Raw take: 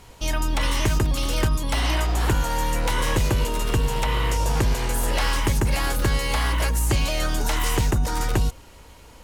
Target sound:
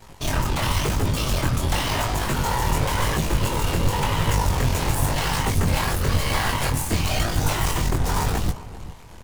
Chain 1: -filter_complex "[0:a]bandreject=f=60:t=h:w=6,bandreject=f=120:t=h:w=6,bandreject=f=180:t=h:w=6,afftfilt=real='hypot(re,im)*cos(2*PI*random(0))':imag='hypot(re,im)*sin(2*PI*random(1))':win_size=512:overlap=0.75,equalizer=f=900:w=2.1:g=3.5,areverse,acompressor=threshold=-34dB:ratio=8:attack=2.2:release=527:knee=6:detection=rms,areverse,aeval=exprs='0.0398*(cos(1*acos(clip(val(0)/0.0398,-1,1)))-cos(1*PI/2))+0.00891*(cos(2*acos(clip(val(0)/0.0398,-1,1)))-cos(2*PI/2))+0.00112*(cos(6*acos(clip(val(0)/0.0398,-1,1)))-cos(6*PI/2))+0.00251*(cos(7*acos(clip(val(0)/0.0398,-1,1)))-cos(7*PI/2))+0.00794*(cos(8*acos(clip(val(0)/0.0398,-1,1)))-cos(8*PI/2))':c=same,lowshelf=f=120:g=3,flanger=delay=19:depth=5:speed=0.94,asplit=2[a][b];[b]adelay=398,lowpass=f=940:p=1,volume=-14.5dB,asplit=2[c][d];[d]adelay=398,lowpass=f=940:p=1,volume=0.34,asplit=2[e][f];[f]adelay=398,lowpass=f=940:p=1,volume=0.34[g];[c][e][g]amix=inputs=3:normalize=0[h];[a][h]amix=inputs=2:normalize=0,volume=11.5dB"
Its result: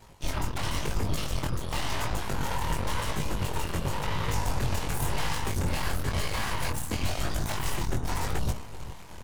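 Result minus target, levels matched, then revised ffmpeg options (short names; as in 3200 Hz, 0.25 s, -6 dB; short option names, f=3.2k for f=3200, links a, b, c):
compressor: peak gain reduction +9.5 dB
-filter_complex "[0:a]bandreject=f=60:t=h:w=6,bandreject=f=120:t=h:w=6,bandreject=f=180:t=h:w=6,afftfilt=real='hypot(re,im)*cos(2*PI*random(0))':imag='hypot(re,im)*sin(2*PI*random(1))':win_size=512:overlap=0.75,equalizer=f=900:w=2.1:g=3.5,areverse,acompressor=threshold=-23dB:ratio=8:attack=2.2:release=527:knee=6:detection=rms,areverse,aeval=exprs='0.0398*(cos(1*acos(clip(val(0)/0.0398,-1,1)))-cos(1*PI/2))+0.00891*(cos(2*acos(clip(val(0)/0.0398,-1,1)))-cos(2*PI/2))+0.00112*(cos(6*acos(clip(val(0)/0.0398,-1,1)))-cos(6*PI/2))+0.00251*(cos(7*acos(clip(val(0)/0.0398,-1,1)))-cos(7*PI/2))+0.00794*(cos(8*acos(clip(val(0)/0.0398,-1,1)))-cos(8*PI/2))':c=same,lowshelf=f=120:g=3,flanger=delay=19:depth=5:speed=0.94,asplit=2[a][b];[b]adelay=398,lowpass=f=940:p=1,volume=-14.5dB,asplit=2[c][d];[d]adelay=398,lowpass=f=940:p=1,volume=0.34,asplit=2[e][f];[f]adelay=398,lowpass=f=940:p=1,volume=0.34[g];[c][e][g]amix=inputs=3:normalize=0[h];[a][h]amix=inputs=2:normalize=0,volume=11.5dB"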